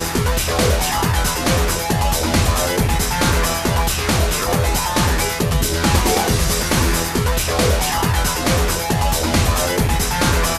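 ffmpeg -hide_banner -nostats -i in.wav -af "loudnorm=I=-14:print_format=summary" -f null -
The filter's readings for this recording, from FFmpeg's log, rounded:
Input Integrated:    -17.4 LUFS
Input True Peak:      -3.5 dBTP
Input LRA:             0.5 LU
Input Threshold:     -27.4 LUFS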